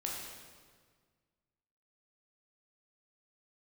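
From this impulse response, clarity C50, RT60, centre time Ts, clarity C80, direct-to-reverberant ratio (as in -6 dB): 0.5 dB, 1.7 s, 84 ms, 2.5 dB, -3.0 dB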